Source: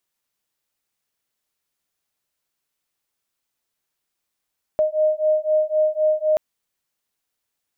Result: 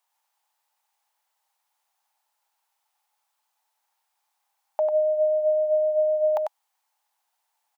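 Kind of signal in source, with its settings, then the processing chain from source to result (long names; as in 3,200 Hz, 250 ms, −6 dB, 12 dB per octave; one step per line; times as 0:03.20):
two tones that beat 616 Hz, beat 3.9 Hz, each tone −19.5 dBFS 1.58 s
brickwall limiter −19.5 dBFS
high-pass with resonance 840 Hz, resonance Q 7.5
on a send: single-tap delay 96 ms −4.5 dB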